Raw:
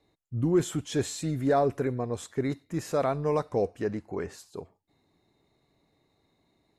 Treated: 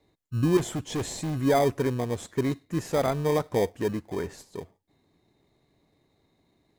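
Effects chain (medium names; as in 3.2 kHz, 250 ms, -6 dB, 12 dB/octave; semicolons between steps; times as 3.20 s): in parallel at -7 dB: sample-and-hold 32×; 0.57–1.38 s: on the sum: hard clipper -25.5 dBFS, distortion -14 dB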